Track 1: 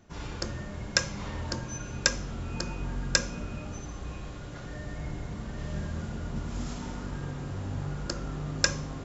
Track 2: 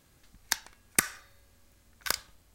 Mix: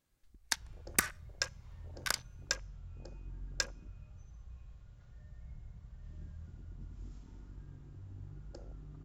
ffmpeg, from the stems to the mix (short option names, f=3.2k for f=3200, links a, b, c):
-filter_complex "[0:a]equalizer=f=200:t=o:w=1.3:g=-12,adelay=450,volume=-9.5dB[a];[1:a]asoftclip=type=tanh:threshold=-14dB,volume=-1dB[b];[a][b]amix=inputs=2:normalize=0,afwtdn=0.00631"